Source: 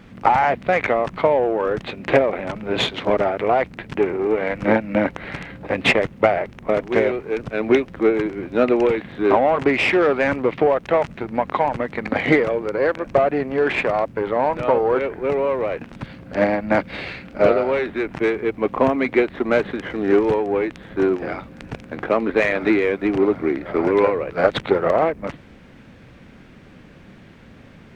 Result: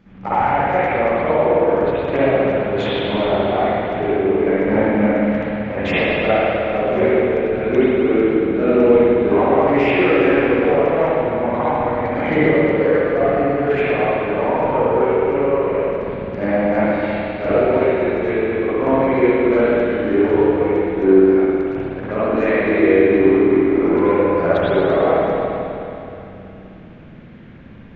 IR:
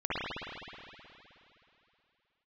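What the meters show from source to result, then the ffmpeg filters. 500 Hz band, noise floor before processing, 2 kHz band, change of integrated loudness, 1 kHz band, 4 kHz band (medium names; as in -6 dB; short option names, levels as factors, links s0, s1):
+4.0 dB, -45 dBFS, +1.0 dB, +3.5 dB, +2.0 dB, -1.5 dB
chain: -filter_complex "[0:a]lowshelf=f=450:g=6[s0];[1:a]atrim=start_sample=2205[s1];[s0][s1]afir=irnorm=-1:irlink=0,aresample=16000,aresample=44100,volume=0.316"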